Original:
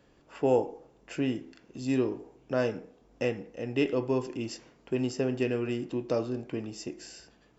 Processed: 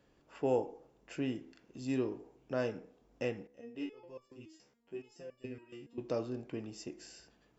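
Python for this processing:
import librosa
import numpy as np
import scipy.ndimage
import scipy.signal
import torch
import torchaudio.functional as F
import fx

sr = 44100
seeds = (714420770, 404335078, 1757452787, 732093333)

y = fx.resonator_held(x, sr, hz=7.1, low_hz=70.0, high_hz=580.0, at=(3.47, 5.98))
y = y * 10.0 ** (-6.5 / 20.0)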